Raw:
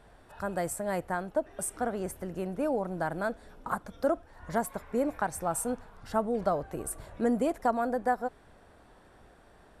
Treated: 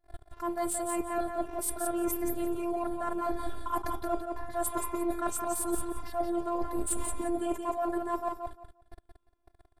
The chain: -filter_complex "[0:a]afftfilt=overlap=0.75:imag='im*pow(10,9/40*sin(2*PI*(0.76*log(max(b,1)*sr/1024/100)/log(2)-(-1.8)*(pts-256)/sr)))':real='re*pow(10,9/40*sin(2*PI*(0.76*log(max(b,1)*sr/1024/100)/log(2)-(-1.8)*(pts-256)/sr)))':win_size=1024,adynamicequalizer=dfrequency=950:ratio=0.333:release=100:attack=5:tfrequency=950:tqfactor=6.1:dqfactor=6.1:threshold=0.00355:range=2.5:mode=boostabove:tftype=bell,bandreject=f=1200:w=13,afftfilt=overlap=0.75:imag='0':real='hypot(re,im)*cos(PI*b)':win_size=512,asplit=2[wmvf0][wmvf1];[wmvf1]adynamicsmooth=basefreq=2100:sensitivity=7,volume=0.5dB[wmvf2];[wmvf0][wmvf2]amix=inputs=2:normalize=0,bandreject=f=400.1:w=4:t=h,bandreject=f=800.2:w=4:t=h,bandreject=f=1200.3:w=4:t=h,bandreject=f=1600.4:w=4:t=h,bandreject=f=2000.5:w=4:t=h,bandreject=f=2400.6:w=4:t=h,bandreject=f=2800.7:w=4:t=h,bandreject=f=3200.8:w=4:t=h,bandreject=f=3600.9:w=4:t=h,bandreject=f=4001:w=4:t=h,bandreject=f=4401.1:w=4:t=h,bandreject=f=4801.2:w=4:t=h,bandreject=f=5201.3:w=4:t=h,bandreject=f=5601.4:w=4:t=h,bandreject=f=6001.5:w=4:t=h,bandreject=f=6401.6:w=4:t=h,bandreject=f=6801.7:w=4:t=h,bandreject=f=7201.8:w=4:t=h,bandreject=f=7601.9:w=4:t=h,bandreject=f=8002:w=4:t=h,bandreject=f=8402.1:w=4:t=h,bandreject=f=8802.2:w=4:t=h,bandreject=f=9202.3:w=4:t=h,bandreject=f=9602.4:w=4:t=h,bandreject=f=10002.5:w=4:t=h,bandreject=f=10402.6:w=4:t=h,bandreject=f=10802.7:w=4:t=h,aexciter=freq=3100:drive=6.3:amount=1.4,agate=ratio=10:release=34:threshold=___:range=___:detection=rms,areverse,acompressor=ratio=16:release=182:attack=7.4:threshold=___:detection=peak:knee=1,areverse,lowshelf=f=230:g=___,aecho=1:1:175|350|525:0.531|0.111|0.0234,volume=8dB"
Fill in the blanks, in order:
-48dB, -36dB, -36dB, 4